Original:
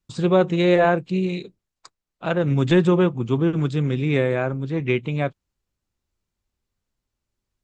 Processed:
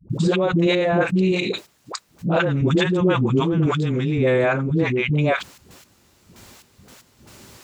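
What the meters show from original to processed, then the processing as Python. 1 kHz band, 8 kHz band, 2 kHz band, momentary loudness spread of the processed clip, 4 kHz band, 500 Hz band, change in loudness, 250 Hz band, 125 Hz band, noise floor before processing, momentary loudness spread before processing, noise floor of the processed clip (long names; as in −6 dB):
+1.0 dB, can't be measured, +3.5 dB, 10 LU, +5.5 dB, +0.5 dB, +1.0 dB, +1.0 dB, +1.5 dB, −83 dBFS, 9 LU, −58 dBFS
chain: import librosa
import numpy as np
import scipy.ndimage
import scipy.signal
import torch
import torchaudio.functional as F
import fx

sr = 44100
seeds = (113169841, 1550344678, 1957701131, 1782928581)

y = scipy.signal.sosfilt(scipy.signal.butter(2, 120.0, 'highpass', fs=sr, output='sos'), x)
y = fx.step_gate(y, sr, bpm=115, pattern='xx..x..xxx.x....', floor_db=-12.0, edge_ms=4.5)
y = fx.dispersion(y, sr, late='highs', ms=98.0, hz=410.0)
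y = fx.env_flatten(y, sr, amount_pct=70)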